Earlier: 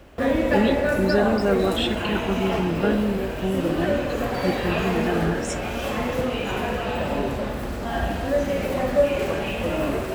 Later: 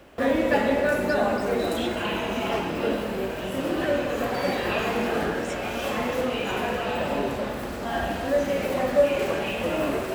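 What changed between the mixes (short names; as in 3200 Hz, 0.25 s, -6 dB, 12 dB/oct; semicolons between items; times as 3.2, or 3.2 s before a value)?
speech -9.5 dB; master: add low shelf 120 Hz -11.5 dB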